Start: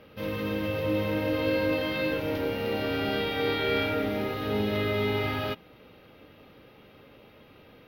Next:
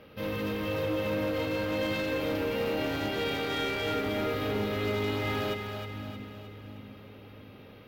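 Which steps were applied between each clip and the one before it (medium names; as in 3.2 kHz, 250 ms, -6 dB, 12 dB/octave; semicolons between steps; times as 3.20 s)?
peak limiter -21.5 dBFS, peak gain reduction 6 dB; overload inside the chain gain 27.5 dB; two-band feedback delay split 310 Hz, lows 697 ms, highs 311 ms, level -6.5 dB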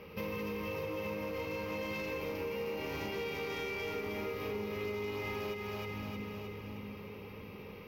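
rippled EQ curve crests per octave 0.81, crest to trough 10 dB; compression 6:1, threshold -37 dBFS, peak gain reduction 12 dB; trim +1 dB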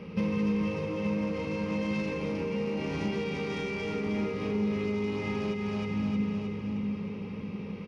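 peaking EQ 190 Hz +14.5 dB 1 oct; resampled via 22.05 kHz; trim +2 dB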